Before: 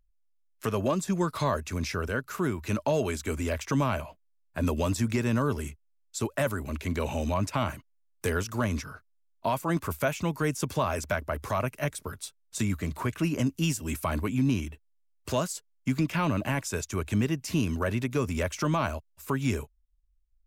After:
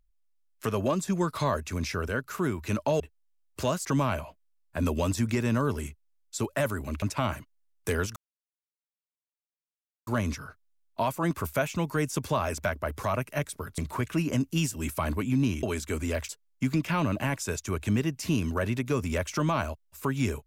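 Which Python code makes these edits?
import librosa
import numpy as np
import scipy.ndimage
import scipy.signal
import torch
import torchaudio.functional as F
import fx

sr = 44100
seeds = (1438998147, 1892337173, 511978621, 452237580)

y = fx.edit(x, sr, fx.swap(start_s=3.0, length_s=0.66, other_s=14.69, other_length_s=0.85),
    fx.cut(start_s=6.83, length_s=0.56),
    fx.insert_silence(at_s=8.53, length_s=1.91),
    fx.cut(start_s=12.24, length_s=0.6), tone=tone)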